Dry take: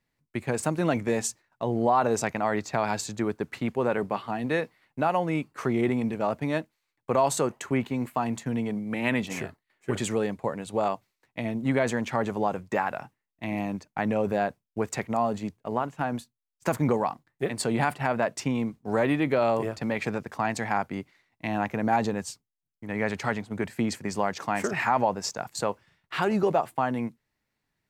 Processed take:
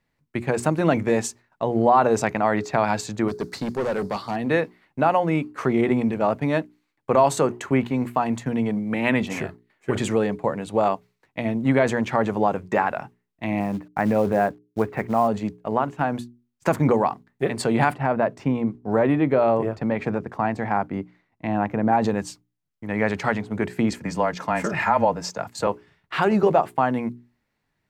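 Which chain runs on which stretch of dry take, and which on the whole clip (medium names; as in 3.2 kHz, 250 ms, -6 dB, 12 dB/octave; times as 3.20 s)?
3.28–4.36 s: resonant high shelf 3.6 kHz +8.5 dB, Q 3 + overload inside the chain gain 26.5 dB
13.60–15.28 s: low-pass 2.3 kHz 24 dB/octave + companded quantiser 6-bit
17.95–22.02 s: de-esser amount 80% + treble shelf 2 kHz -11 dB
23.91–25.67 s: high-pass 110 Hz + frequency shift -18 Hz + comb of notches 380 Hz
whole clip: treble shelf 4 kHz -8 dB; hum notches 60/120/180/240/300/360/420 Hz; trim +6 dB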